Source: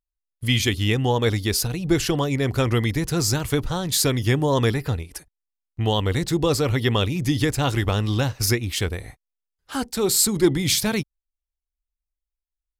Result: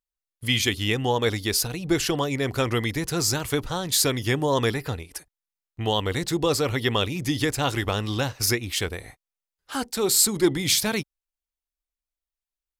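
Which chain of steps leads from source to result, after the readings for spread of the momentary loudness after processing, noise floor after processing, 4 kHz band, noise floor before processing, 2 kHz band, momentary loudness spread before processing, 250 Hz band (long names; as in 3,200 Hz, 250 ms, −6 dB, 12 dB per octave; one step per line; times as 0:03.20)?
10 LU, below −85 dBFS, 0.0 dB, below −85 dBFS, 0.0 dB, 9 LU, −3.5 dB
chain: low-shelf EQ 220 Hz −8.5 dB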